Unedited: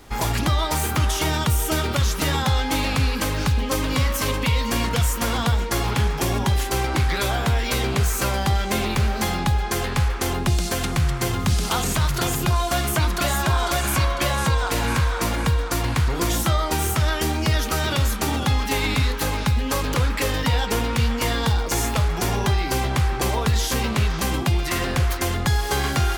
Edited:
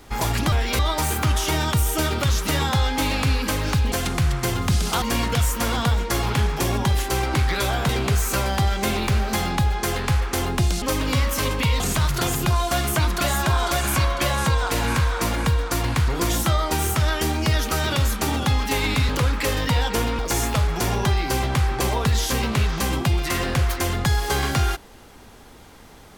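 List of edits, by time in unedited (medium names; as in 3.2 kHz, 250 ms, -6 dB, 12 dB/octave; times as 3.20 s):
3.65–4.63 s: swap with 10.70–11.80 s
7.50–7.77 s: move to 0.52 s
19.09–19.86 s: delete
20.96–21.60 s: delete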